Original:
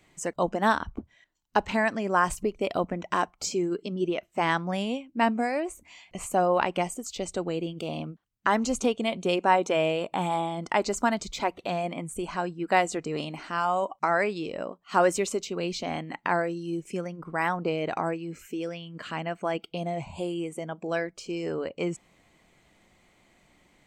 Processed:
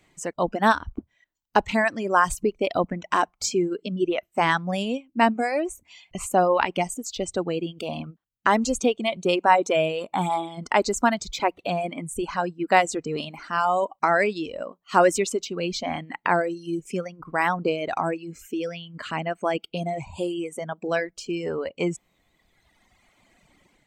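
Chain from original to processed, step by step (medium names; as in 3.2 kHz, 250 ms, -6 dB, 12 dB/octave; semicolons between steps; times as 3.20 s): reverb removal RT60 1.9 s; level rider gain up to 5 dB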